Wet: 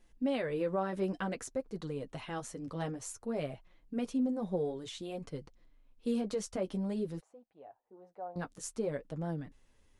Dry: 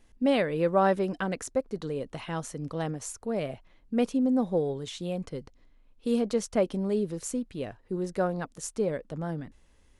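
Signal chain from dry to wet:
brickwall limiter −20 dBFS, peak gain reduction 8 dB
0:07.20–0:08.36: resonant band-pass 770 Hz, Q 5
flanger 0.54 Hz, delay 5.4 ms, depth 6 ms, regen −25%
level −1.5 dB

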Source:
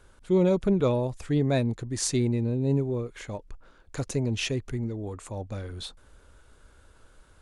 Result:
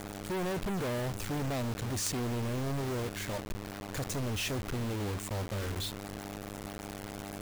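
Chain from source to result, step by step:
hum with harmonics 100 Hz, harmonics 4, −43 dBFS −6 dB per octave
log-companded quantiser 2 bits
level −7.5 dB

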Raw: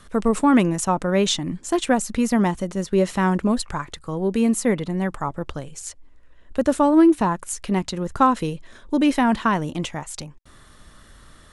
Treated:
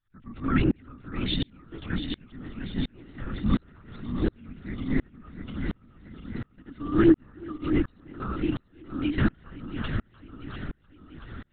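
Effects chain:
feedback delay that plays each chunk backwards 345 ms, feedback 76%, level −6.5 dB
elliptic band-stop filter 360–1,200 Hz
linear-prediction vocoder at 8 kHz whisper
tremolo with a ramp in dB swelling 1.4 Hz, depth 36 dB
level +1.5 dB

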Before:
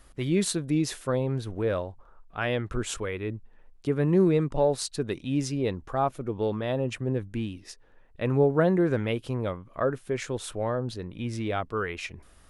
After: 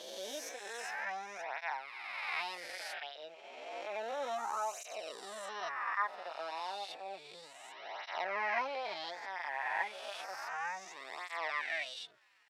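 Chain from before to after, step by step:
peak hold with a rise ahead of every peak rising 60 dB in 2.16 s
high-pass filter 1,100 Hz 12 dB per octave
dynamic equaliser 2,000 Hz, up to −6 dB, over −47 dBFS, Q 2
pitch shifter +7 semitones
head-to-tape spacing loss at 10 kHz 24 dB
through-zero flanger with one copy inverted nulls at 0.31 Hz, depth 7.3 ms
level +3 dB

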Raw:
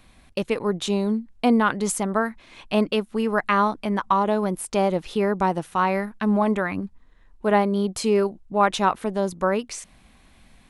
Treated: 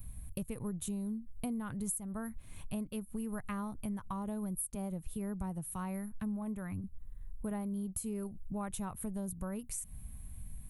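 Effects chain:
drawn EQ curve 110 Hz 0 dB, 350 Hz −23 dB, 5,100 Hz −27 dB, 11,000 Hz +3 dB
downward compressor 5 to 1, threshold −48 dBFS, peak gain reduction 19 dB
0:04.75–0:06.84: multiband upward and downward expander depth 40%
level +11 dB

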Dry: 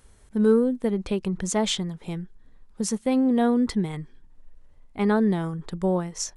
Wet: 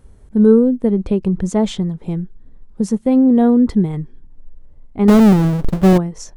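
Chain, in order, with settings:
0:05.08–0:05.98: each half-wave held at its own peak
tilt shelving filter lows +8 dB, about 880 Hz
level +3 dB

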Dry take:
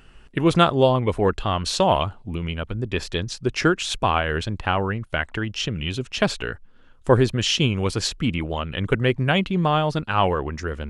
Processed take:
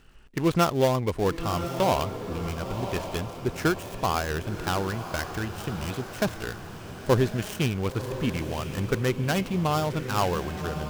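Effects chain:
gap after every zero crossing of 0.13 ms
feedback delay with all-pass diffusion 1,062 ms, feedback 47%, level −9 dB
level −5 dB

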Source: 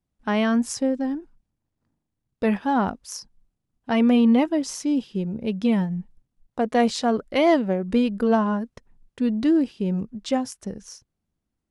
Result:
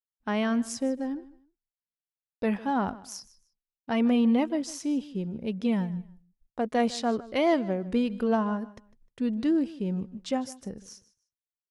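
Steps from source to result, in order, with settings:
downward expander −49 dBFS
repeating echo 153 ms, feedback 23%, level −19 dB
level −5.5 dB

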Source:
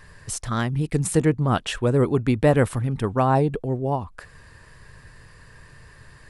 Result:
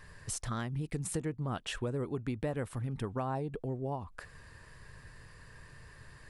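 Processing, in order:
downward compressor 4 to 1, threshold −28 dBFS, peak gain reduction 13.5 dB
level −5.5 dB

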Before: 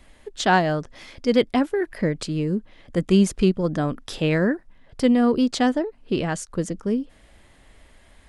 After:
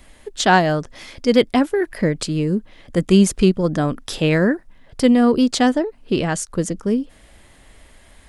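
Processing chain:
high-shelf EQ 7,200 Hz +7 dB
level +4 dB

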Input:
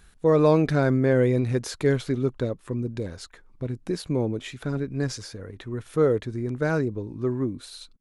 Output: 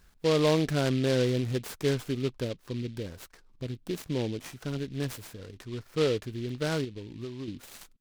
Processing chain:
0:05.73–0:06.13: flat-topped bell 5,100 Hz −10 dB
0:06.84–0:07.48: downward compressor 6 to 1, threshold −30 dBFS, peak gain reduction 9.5 dB
short delay modulated by noise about 3,000 Hz, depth 0.076 ms
level −5.5 dB

